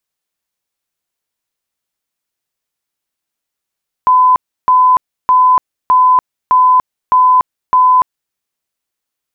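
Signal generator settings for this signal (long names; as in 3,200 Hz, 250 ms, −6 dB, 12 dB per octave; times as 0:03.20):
tone bursts 1,010 Hz, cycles 292, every 0.61 s, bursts 7, −5 dBFS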